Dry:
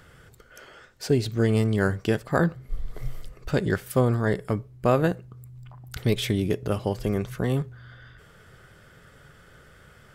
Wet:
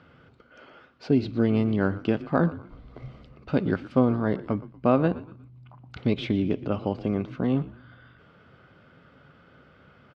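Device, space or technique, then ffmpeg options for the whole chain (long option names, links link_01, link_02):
frequency-shifting delay pedal into a guitar cabinet: -filter_complex "[0:a]asplit=4[link_01][link_02][link_03][link_04];[link_02]adelay=119,afreqshift=-77,volume=-17dB[link_05];[link_03]adelay=238,afreqshift=-154,volume=-25.2dB[link_06];[link_04]adelay=357,afreqshift=-231,volume=-33.4dB[link_07];[link_01][link_05][link_06][link_07]amix=inputs=4:normalize=0,highpass=100,equalizer=frequency=120:width_type=q:width=4:gain=-4,equalizer=frequency=260:width_type=q:width=4:gain=7,equalizer=frequency=420:width_type=q:width=4:gain=-4,equalizer=frequency=1800:width_type=q:width=4:gain=-10,equalizer=frequency=3400:width_type=q:width=4:gain=-5,lowpass=frequency=3700:width=0.5412,lowpass=frequency=3700:width=1.3066"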